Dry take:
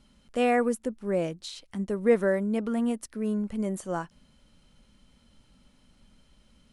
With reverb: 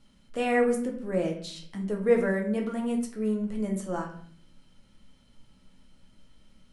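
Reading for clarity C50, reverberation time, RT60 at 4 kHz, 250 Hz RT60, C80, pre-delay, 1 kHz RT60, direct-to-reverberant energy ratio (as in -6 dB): 8.0 dB, 0.55 s, 0.45 s, 0.80 s, 11.5 dB, 6 ms, 0.55 s, 0.5 dB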